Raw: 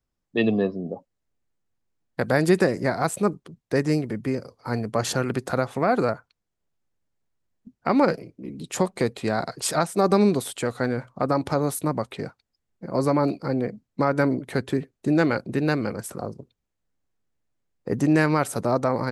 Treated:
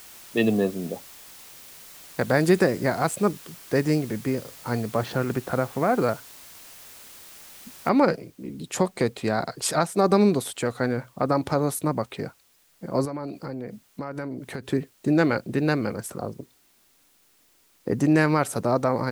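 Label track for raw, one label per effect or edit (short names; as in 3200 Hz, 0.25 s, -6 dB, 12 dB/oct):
4.950000	6.010000	air absorption 280 m
7.890000	7.890000	noise floor step -46 dB -62 dB
13.050000	14.660000	compressor 4:1, threshold -30 dBFS
16.390000	17.910000	bell 300 Hz +7 dB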